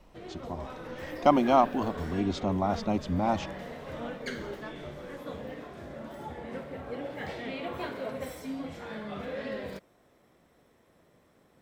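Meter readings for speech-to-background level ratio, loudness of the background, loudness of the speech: 11.5 dB, -39.0 LUFS, -27.5 LUFS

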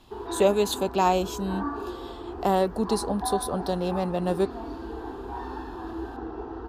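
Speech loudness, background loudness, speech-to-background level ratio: -26.5 LUFS, -36.0 LUFS, 9.5 dB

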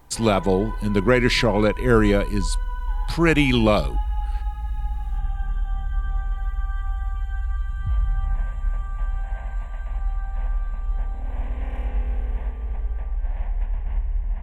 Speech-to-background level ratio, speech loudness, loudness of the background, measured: 10.0 dB, -20.0 LUFS, -30.0 LUFS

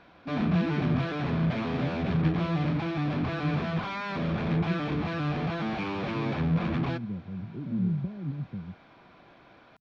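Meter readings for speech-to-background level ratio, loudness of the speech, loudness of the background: -3.5 dB, -34.0 LUFS, -30.5 LUFS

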